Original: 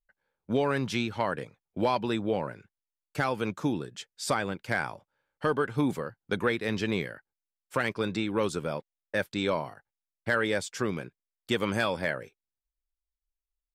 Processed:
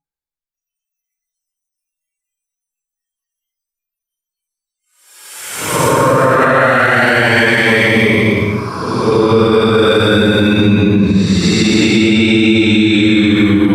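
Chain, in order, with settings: Paulstretch 14×, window 0.10 s, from 7.32; spectral noise reduction 28 dB; compressor 1.5:1, threshold -35 dBFS, peak gain reduction 4.5 dB; maximiser +28 dB; ending taper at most 150 dB/s; gain -1 dB

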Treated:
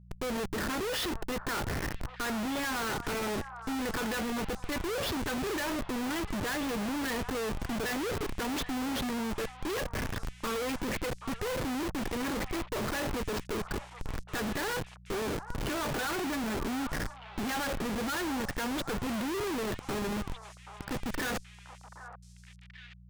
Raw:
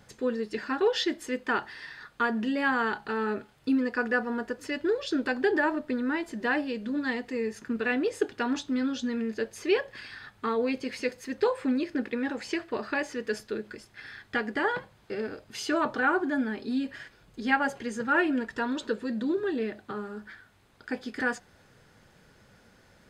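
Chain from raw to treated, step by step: low-pass opened by the level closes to 760 Hz, open at -24 dBFS; dynamic EQ 260 Hz, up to -3 dB, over -40 dBFS, Q 2.7; in parallel at -3 dB: compressor 6:1, threshold -41 dBFS, peak gain reduction 20.5 dB; on the sum: Schmitt trigger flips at -38.5 dBFS; buzz 60 Hz, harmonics 3, -51 dBFS; on a send: delay with a stepping band-pass 0.779 s, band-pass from 1000 Hz, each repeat 1.4 oct, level -7.5 dB; on the sum: gain -2.5 dB

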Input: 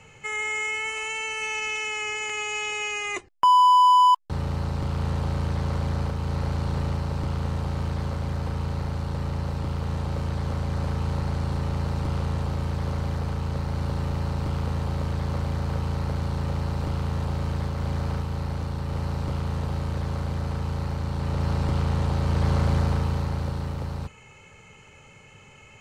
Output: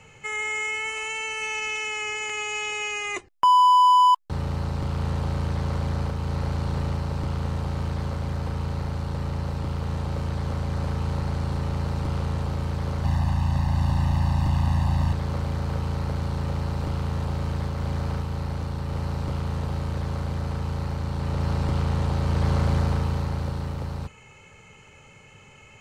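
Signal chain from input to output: 13.04–15.13 comb 1.1 ms, depth 98%

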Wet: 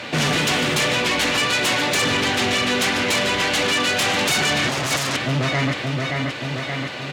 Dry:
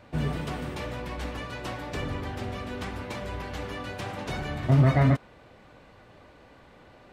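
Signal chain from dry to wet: weighting filter D; feedback echo 0.575 s, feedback 51%, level -11.5 dB; in parallel at -4 dB: sine folder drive 18 dB, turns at -11 dBFS; on the sum: limiter -16 dBFS, peak gain reduction 7 dB; HPF 100 Hz 12 dB/oct; bell 6800 Hz +3 dB 0.28 oct

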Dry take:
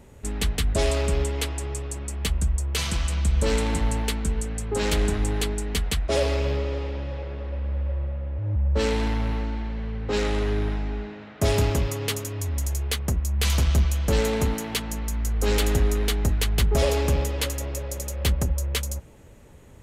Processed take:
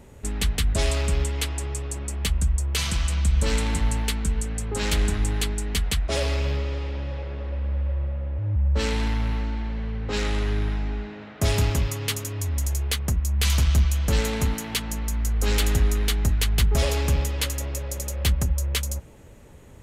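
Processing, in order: dynamic EQ 470 Hz, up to -7 dB, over -38 dBFS, Q 0.7; gain +1.5 dB

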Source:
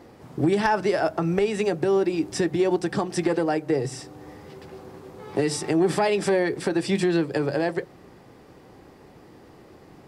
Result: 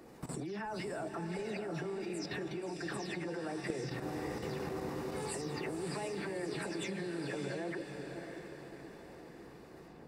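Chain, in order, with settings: spectral delay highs early, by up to 0.2 s; compressor 8:1, threshold -31 dBFS, peak gain reduction 14 dB; notch 3200 Hz, Q 13; level quantiser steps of 15 dB; diffused feedback echo 0.612 s, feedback 48%, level -6 dB; gain +5 dB

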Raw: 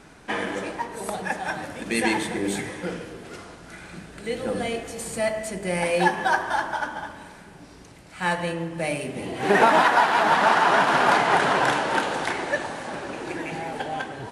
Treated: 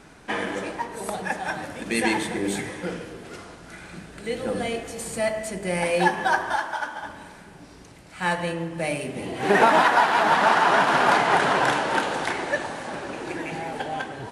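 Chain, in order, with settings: 6.56–7.04 low shelf 350 Hz -10.5 dB

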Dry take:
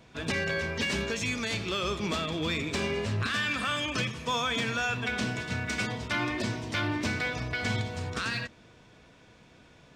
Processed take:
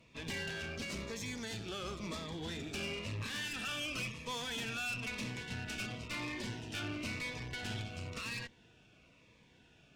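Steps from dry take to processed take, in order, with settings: bell 2700 Hz +8.5 dB 0.42 oct, from 0.76 s -4.5 dB, from 2.74 s +9 dB; tube stage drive 29 dB, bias 0.6; cascading phaser falling 0.98 Hz; gain -5 dB

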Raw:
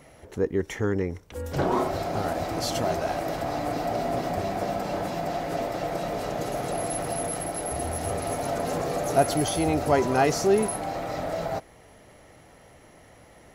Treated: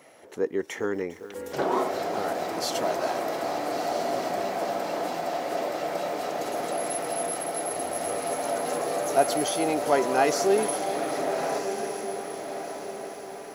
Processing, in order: HPF 310 Hz 12 dB/oct; diffused feedback echo 1.335 s, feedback 42%, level -8.5 dB; lo-fi delay 0.403 s, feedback 80%, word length 8-bit, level -15 dB

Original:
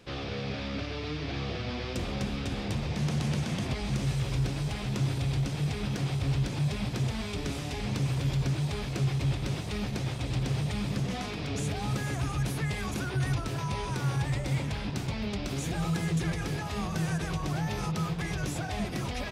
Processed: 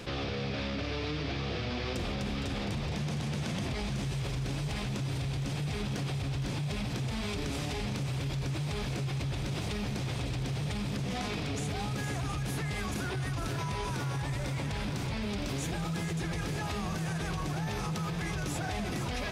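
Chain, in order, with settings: limiter -28 dBFS, peak gain reduction 9.5 dB; thinning echo 0.462 s, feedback 77%, level -10 dB; fast leveller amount 50%

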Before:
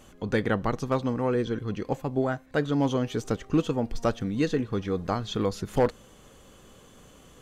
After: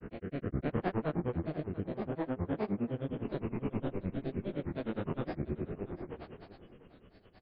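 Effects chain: time blur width 0.62 s; steep low-pass 3200 Hz 96 dB/oct; echo 88 ms -4 dB; grains, grains 9.7/s, spray 38 ms, pitch spread up and down by 7 st; rotary speaker horn 0.75 Hz; on a send: feedback echo 0.691 s, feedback 18%, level -16.5 dB

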